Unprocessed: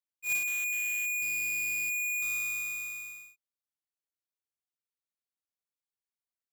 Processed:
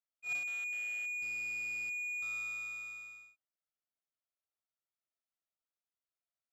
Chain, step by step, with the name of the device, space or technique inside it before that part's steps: inside a cardboard box (low-pass 4.6 kHz 12 dB/octave; small resonant body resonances 660/1300 Hz, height 11 dB, ringing for 30 ms); trim -6 dB

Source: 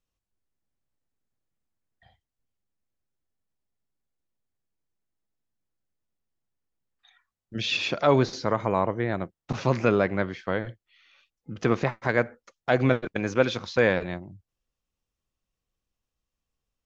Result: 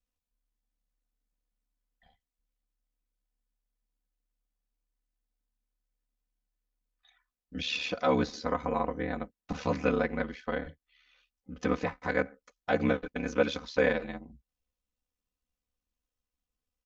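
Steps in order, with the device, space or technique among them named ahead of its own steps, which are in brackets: ring-modulated robot voice (ring modulator 36 Hz; comb 4 ms, depth 79%); trim -4.5 dB

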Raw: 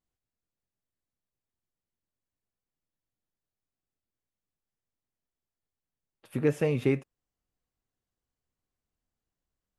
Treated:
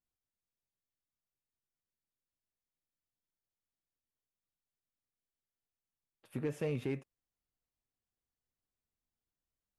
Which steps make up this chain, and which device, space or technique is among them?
limiter into clipper (peak limiter -18.5 dBFS, peak gain reduction 5.5 dB; hard clipper -20.5 dBFS, distortion -25 dB); trim -7.5 dB

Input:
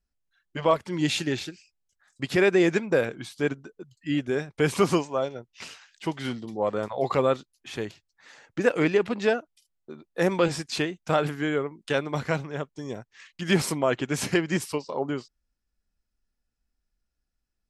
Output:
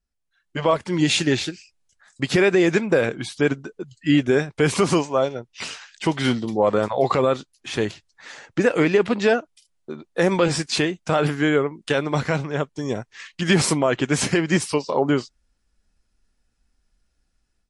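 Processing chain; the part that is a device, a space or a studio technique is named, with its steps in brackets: low-bitrate web radio (level rider gain up to 12 dB; peak limiter -7.5 dBFS, peak gain reduction 6 dB; MP3 48 kbps 24 kHz)

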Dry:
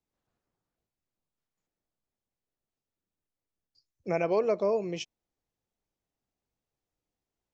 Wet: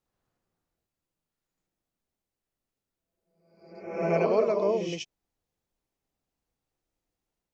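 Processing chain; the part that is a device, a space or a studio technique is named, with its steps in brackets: reverse reverb (reverse; reverberation RT60 0.85 s, pre-delay 66 ms, DRR 0.5 dB; reverse)

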